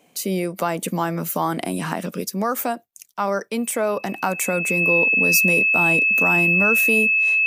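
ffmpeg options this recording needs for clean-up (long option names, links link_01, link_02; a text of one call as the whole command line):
ffmpeg -i in.wav -af "bandreject=frequency=2600:width=30" out.wav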